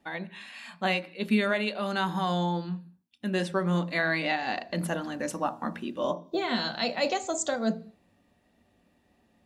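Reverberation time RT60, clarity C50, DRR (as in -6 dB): 0.45 s, 17.0 dB, 9.0 dB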